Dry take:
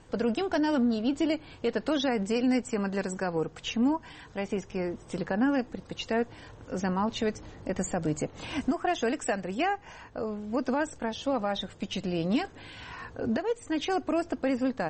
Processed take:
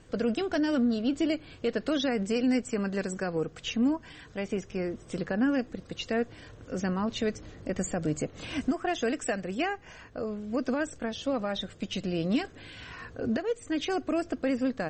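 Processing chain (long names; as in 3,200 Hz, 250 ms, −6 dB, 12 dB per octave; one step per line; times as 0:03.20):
parametric band 890 Hz −10 dB 0.4 octaves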